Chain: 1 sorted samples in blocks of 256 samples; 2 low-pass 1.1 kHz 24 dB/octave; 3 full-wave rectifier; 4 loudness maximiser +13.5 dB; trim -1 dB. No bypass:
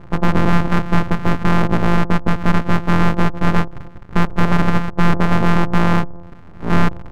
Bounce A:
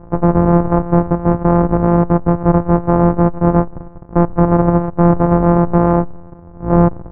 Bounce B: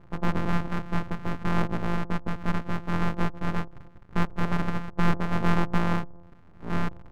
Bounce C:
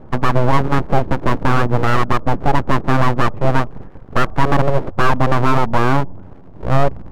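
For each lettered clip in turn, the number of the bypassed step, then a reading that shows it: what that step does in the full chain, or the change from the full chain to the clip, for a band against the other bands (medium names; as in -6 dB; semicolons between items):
3, 2 kHz band -14.5 dB; 4, crest factor change +4.5 dB; 1, 250 Hz band -4.0 dB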